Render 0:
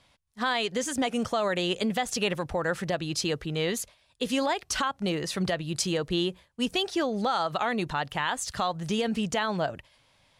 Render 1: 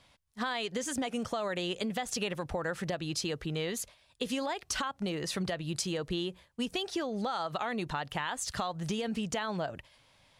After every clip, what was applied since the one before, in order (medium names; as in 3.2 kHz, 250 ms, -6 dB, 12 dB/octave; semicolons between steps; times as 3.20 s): compression 4:1, threshold -31 dBFS, peak gain reduction 8 dB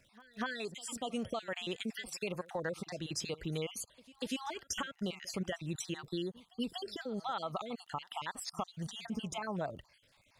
random holes in the spectrogram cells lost 48%; pre-echo 241 ms -21.5 dB; crackle 36 per s -55 dBFS; trim -2.5 dB